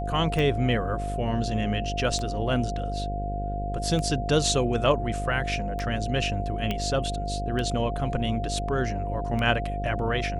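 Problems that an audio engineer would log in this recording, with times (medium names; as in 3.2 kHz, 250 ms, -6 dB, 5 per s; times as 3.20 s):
buzz 50 Hz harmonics 12 -31 dBFS
tick 33 1/3 rpm
whine 700 Hz -32 dBFS
6.71 s: pop -14 dBFS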